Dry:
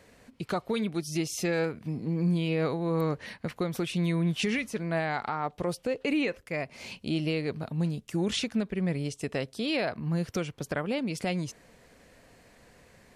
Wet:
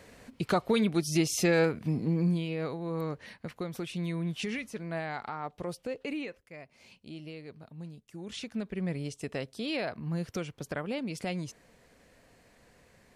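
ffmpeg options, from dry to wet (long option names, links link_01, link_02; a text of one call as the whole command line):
ffmpeg -i in.wav -af "volume=14dB,afade=type=out:start_time=1.97:duration=0.51:silence=0.334965,afade=type=out:start_time=5.97:duration=0.48:silence=0.375837,afade=type=in:start_time=8.23:duration=0.52:silence=0.298538" out.wav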